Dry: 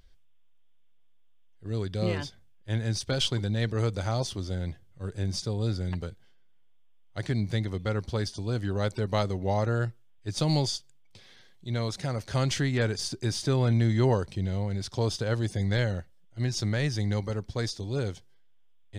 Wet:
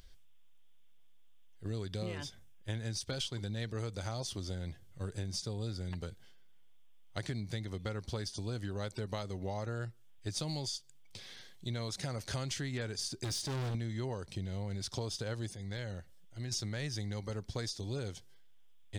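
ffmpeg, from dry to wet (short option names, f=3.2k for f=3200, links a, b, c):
-filter_complex "[0:a]asettb=1/sr,asplit=3[a][b][c];[a]atrim=end=2.024[d];[b]atrim=start=2.02:end=2.75,asetpts=PTS-STARTPTS,afade=t=in:d=0.004:c=qsin,afade=t=out:st=0.726:d=0.004:c=qsin,equalizer=f=4.4k:w=7.8:g=-9[e];[c]atrim=start=2.746[f];[d][e]acrossfade=d=0.004:c1=hsin:c2=qsin[g];[g][f]acrossfade=d=0.004:c1=qsin:c2=hsin,asettb=1/sr,asplit=3[h][i][j];[h]atrim=end=13.244[k];[i]atrim=start=13.24:end=13.75,asetpts=PTS-STARTPTS,afade=t=in:d=0.004:c=qsin,afade=t=out:st=0.506:d=0.004:c=qsin,asoftclip=type=hard:threshold=-29.5dB[l];[j]atrim=start=13.746[m];[k][l]acrossfade=d=0.004:c1=hsin:c2=qsin[n];[n][m]acrossfade=d=0.004:c1=qsin:c2=hsin,asplit=3[o][p][q];[o]afade=t=out:st=15.53:d=0.02[r];[p]acompressor=threshold=-48dB:ratio=2:attack=3.2:release=140:knee=1:detection=peak,afade=t=in:st=15.53:d=0.02,afade=t=out:st=16.51:d=0.02[s];[q]afade=t=in:st=16.51:d=0.02[t];[r][s][t]amix=inputs=3:normalize=0,highshelf=f=3.5k:g=7.5,acompressor=threshold=-36dB:ratio=10,volume=1dB"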